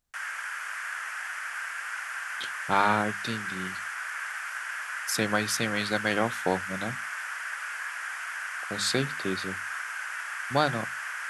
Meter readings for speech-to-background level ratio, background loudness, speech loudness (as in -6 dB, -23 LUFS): 5.0 dB, -34.0 LUFS, -29.0 LUFS